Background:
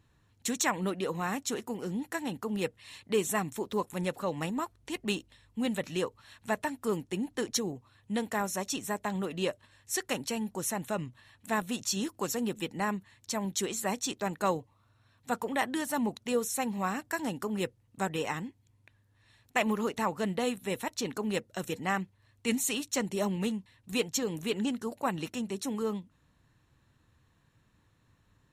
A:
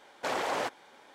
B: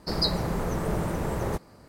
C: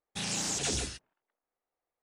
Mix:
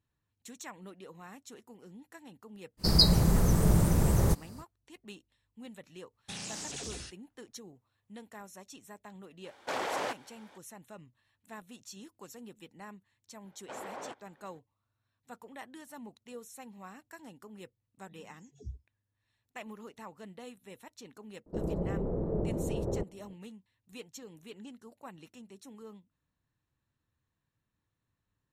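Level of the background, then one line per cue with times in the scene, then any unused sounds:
background -16.5 dB
2.77 add B -4 dB, fades 0.05 s + tone controls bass +11 dB, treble +13 dB
6.13 add C -2.5 dB + compressor 10:1, threshold -34 dBFS
9.44 add A -2.5 dB
13.45 add A -10 dB + LPF 1400 Hz 6 dB/oct
17.92 add C -12 dB + spectral expander 4:1
21.46 add B -5.5 dB + synth low-pass 470 Hz, resonance Q 1.6

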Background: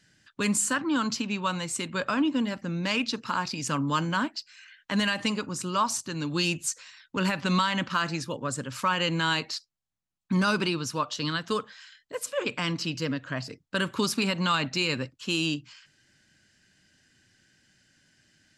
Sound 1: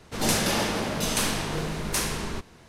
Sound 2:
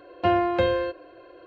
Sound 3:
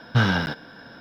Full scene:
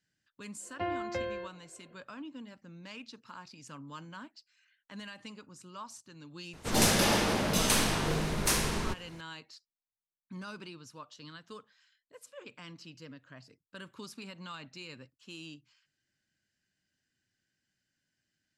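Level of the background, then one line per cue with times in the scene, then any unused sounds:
background -19 dB
0.56 add 2 -13.5 dB, fades 0.10 s + bell 2000 Hz +11.5 dB 0.23 oct
6.53 add 1 -1 dB
not used: 3

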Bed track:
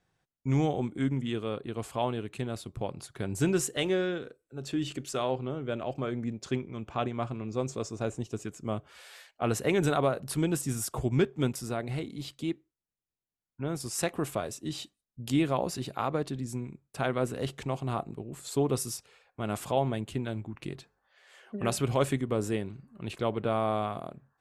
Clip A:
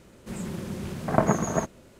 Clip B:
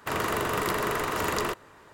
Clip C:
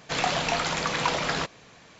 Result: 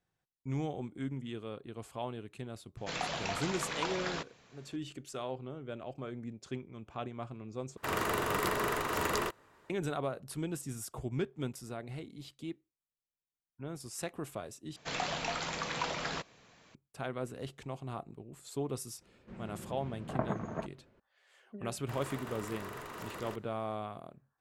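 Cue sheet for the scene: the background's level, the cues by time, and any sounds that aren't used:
bed track -9 dB
2.77 add C -10.5 dB
7.77 replace with B -3.5 dB + upward expander, over -40 dBFS
14.76 replace with C -9.5 dB
19.01 add A -12.5 dB + LPF 2500 Hz
21.82 add B -12.5 dB + limiter -22 dBFS

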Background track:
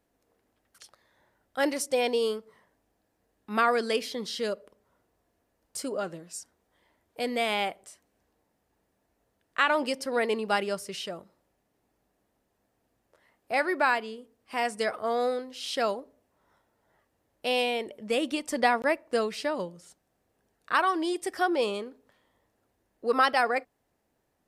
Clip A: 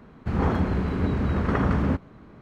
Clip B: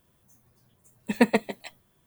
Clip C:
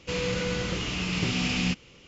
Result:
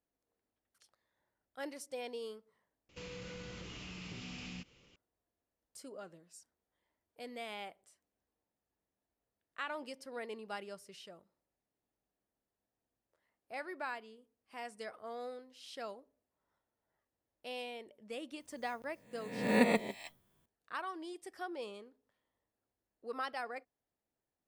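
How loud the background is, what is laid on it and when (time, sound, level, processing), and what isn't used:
background track -16.5 dB
2.89 replace with C -12.5 dB + compressor 2.5:1, threshold -33 dBFS
18.4 add B -10 dB + spectral swells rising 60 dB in 0.81 s
not used: A

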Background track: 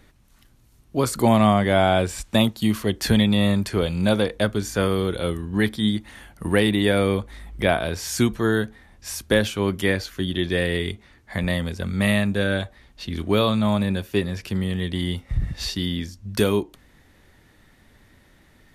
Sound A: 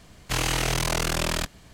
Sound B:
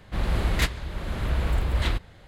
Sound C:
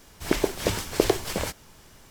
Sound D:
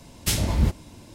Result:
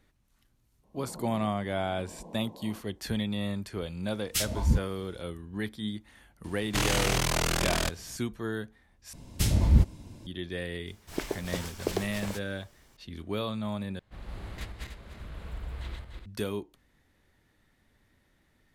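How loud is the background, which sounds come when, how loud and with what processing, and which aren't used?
background track -13 dB
0.83 add B -12.5 dB + FFT band-pass 160–1100 Hz
4.08 add D -3 dB + spectral noise reduction 11 dB
6.44 add A -2 dB
9.13 replace with D -7.5 dB + low shelf 290 Hz +9.5 dB
10.87 add C -9.5 dB
13.99 replace with B -18 dB + regenerating reverse delay 0.147 s, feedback 50%, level -1.5 dB

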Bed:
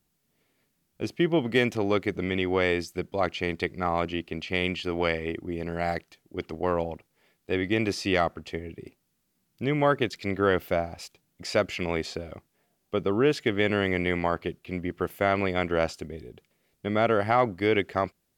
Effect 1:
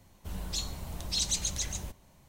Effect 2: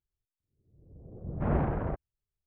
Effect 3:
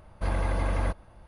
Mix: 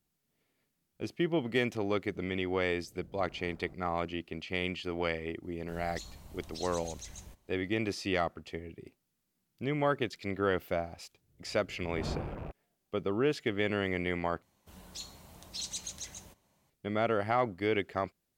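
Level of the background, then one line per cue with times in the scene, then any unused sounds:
bed -6.5 dB
1.79 add 2 -15.5 dB + compressor, threshold -36 dBFS
5.43 add 1 -11 dB + limiter -23 dBFS
10.56 add 2 -9 dB + rattling part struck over -37 dBFS, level -38 dBFS
14.42 replace with 1 -8.5 dB + HPF 180 Hz 6 dB/oct
not used: 3

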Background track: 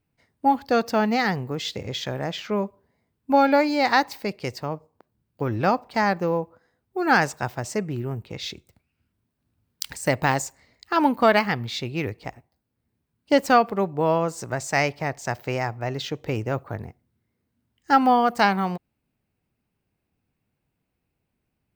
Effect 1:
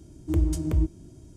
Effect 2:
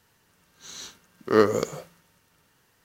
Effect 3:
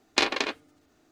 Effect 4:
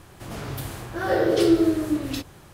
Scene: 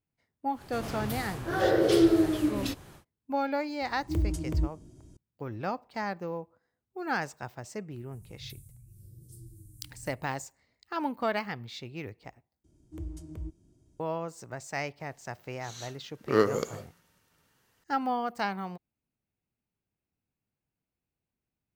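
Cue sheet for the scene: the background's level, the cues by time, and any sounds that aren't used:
background track -12 dB
0.52 add 4 -3 dB, fades 0.10 s
3.81 add 1 -5 dB
7.92 add 4 -13.5 dB + Chebyshev band-stop 140–8600 Hz, order 3
12.64 replace with 1 -16 dB
15 add 2 -5 dB
not used: 3

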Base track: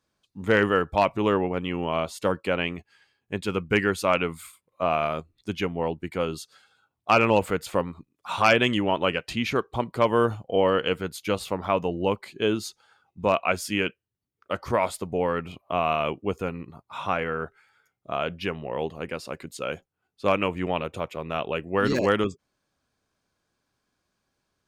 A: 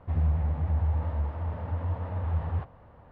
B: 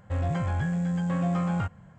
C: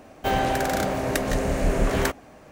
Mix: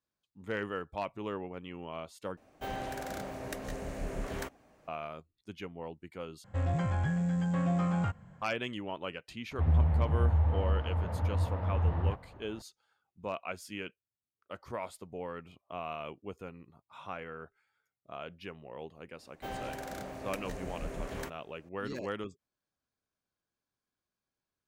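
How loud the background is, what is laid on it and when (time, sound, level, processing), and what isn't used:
base track -15 dB
2.37 replace with C -15 dB
6.44 replace with B -3 dB
9.51 add A
19.18 add C -17 dB

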